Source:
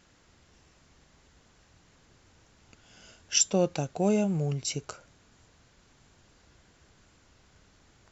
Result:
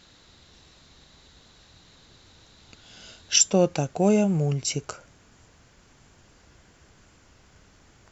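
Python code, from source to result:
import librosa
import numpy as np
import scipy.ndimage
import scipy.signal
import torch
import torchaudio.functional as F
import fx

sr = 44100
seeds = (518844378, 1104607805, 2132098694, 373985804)

y = fx.peak_eq(x, sr, hz=3900.0, db=fx.steps((0.0, 13.5), (3.36, -3.0)), octaves=0.35)
y = F.gain(torch.from_numpy(y), 5.0).numpy()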